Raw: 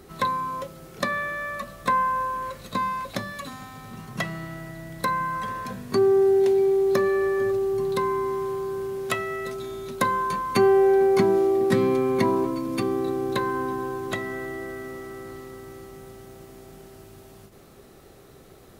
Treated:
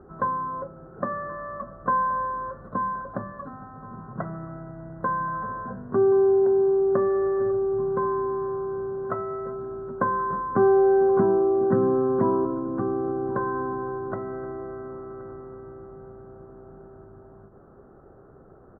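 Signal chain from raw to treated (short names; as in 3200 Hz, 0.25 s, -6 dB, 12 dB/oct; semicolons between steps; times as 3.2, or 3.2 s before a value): elliptic low-pass 1500 Hz, stop band 40 dB; on a send: echo 1.076 s -20.5 dB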